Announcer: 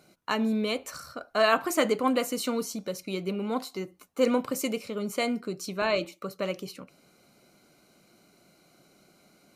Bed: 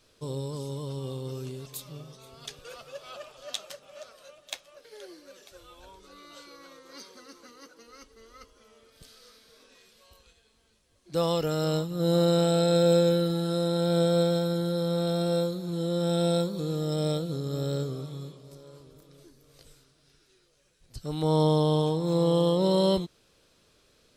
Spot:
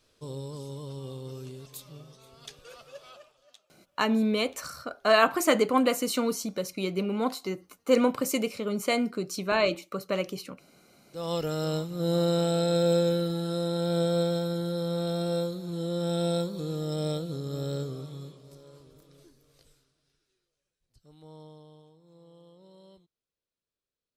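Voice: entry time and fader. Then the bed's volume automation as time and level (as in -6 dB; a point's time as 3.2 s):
3.70 s, +2.0 dB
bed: 3.05 s -4 dB
3.63 s -25 dB
10.93 s -25 dB
11.34 s -2.5 dB
19.23 s -2.5 dB
21.91 s -31.5 dB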